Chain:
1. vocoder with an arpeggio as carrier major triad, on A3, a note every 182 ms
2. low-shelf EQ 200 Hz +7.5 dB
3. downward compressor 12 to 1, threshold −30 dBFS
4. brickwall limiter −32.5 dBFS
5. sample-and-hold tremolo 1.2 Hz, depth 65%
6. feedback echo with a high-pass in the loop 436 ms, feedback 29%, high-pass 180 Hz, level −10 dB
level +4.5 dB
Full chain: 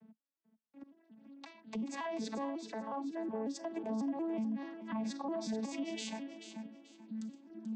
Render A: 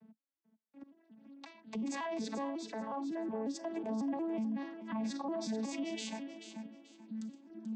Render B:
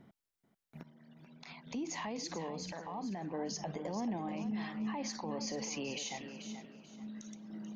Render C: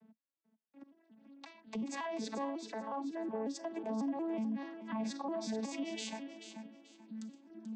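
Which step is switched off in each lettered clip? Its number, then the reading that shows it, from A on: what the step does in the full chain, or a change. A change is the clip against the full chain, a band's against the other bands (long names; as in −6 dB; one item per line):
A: 3, average gain reduction 6.5 dB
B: 1, 8 kHz band +7.5 dB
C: 2, 250 Hz band −1.5 dB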